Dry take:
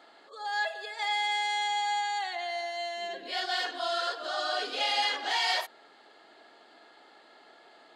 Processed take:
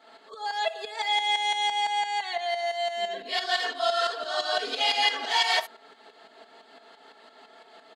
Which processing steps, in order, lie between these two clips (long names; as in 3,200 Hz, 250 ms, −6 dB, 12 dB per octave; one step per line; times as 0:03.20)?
shaped tremolo saw up 5.9 Hz, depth 70%
comb filter 4.5 ms, depth 72%
level +5.5 dB